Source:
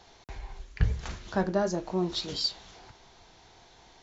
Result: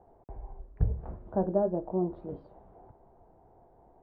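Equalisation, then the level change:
transistor ladder low-pass 860 Hz, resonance 30%
+5.0 dB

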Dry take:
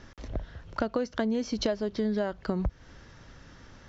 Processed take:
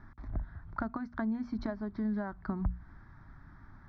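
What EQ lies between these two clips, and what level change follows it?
high-frequency loss of the air 420 metres
mains-hum notches 60/120/180/240 Hz
phaser with its sweep stopped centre 1,200 Hz, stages 4
0.0 dB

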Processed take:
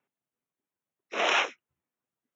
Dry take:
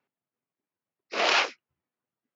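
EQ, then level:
Butterworth band-reject 4,600 Hz, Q 2.5
−1.5 dB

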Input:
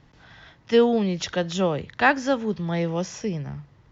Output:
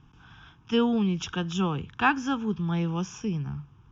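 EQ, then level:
high-frequency loss of the air 85 metres
phaser with its sweep stopped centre 2,900 Hz, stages 8
+1.0 dB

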